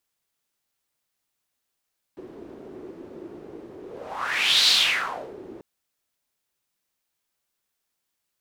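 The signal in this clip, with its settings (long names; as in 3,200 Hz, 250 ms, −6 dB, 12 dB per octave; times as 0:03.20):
pass-by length 3.44 s, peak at 0:02.51, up 0.90 s, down 0.76 s, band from 360 Hz, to 4,000 Hz, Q 4.5, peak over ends 23 dB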